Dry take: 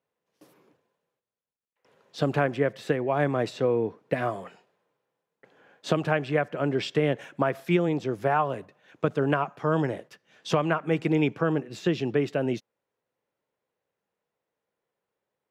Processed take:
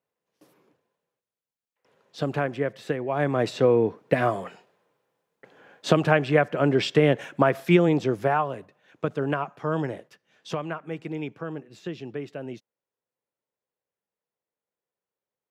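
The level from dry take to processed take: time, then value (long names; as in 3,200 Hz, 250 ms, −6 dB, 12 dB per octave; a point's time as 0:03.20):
0:03.08 −2 dB
0:03.56 +5 dB
0:08.06 +5 dB
0:08.52 −2 dB
0:09.91 −2 dB
0:11.00 −9 dB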